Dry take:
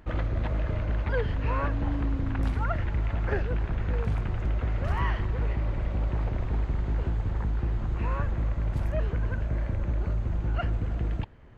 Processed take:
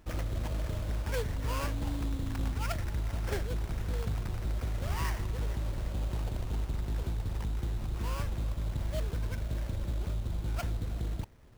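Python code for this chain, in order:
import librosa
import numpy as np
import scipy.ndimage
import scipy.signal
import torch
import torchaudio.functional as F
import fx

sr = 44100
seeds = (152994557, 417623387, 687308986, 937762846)

y = fx.sample_hold(x, sr, seeds[0], rate_hz=3800.0, jitter_pct=20)
y = y * librosa.db_to_amplitude(-5.5)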